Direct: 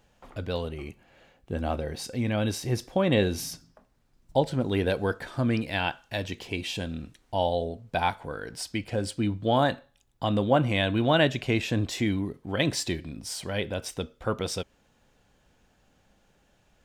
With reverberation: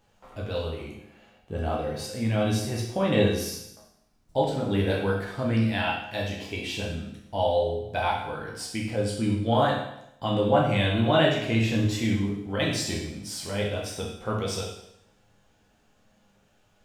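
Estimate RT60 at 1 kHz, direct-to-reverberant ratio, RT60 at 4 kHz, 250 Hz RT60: 0.80 s, -3.5 dB, 0.80 s, 0.75 s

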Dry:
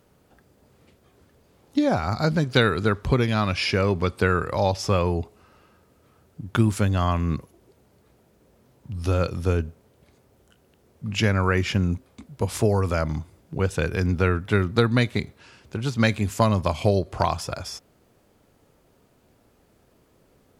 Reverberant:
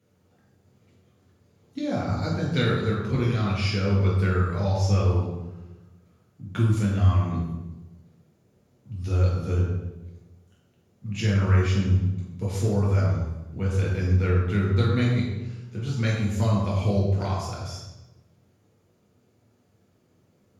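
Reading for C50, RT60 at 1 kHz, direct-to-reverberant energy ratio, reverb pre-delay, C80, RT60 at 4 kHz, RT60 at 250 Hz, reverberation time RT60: 2.0 dB, 0.95 s, -4.5 dB, 3 ms, 4.0 dB, 0.80 s, 1.4 s, 1.1 s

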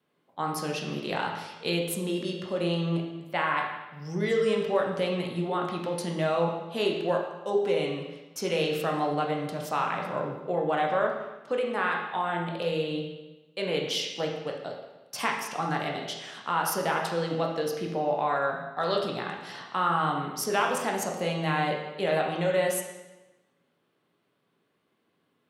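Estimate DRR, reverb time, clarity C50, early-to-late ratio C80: 0.0 dB, 1.1 s, 4.0 dB, 6.5 dB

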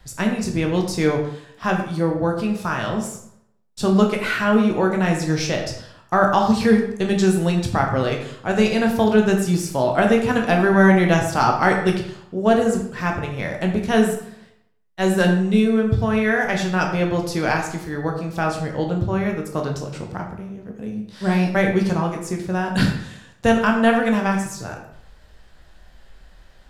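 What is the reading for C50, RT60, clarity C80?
6.5 dB, 0.70 s, 8.5 dB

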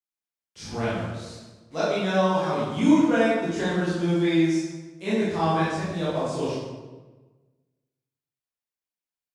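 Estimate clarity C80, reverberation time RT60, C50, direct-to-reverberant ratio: 2.0 dB, 1.3 s, -2.0 dB, -11.0 dB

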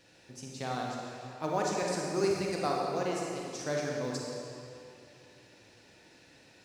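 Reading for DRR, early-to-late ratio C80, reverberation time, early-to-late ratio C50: -2.5 dB, 0.5 dB, 2.6 s, -1.0 dB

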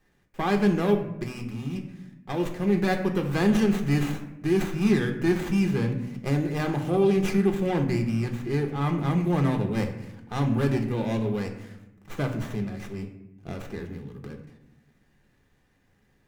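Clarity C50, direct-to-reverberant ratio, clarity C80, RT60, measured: 8.5 dB, 4.0 dB, 11.5 dB, 0.90 s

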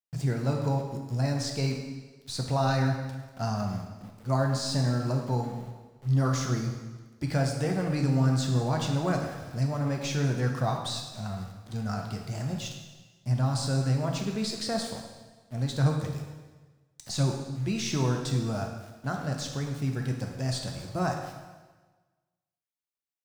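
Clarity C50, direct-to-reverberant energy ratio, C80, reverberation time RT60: 4.5 dB, 1.5 dB, 6.5 dB, 1.3 s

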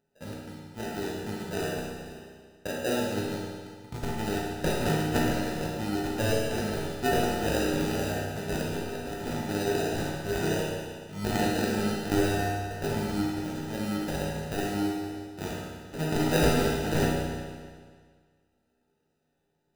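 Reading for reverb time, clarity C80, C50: 1.8 s, 1.5 dB, -1.0 dB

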